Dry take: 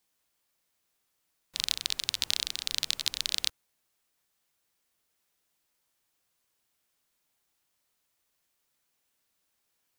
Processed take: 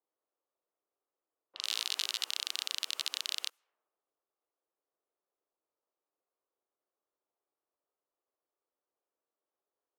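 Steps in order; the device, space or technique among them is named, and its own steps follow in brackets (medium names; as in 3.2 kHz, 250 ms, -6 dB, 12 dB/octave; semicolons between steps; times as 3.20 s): laptop speaker (high-pass 370 Hz 24 dB/octave; peaking EQ 1.2 kHz +6 dB 0.45 oct; peaking EQ 2.9 kHz +5.5 dB 0.22 oct; peak limiter -15 dBFS, peak gain reduction 11.5 dB); 1.61–2.25 s: doubling 17 ms -2 dB; level-controlled noise filter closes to 480 Hz, open at -40.5 dBFS; trim +1.5 dB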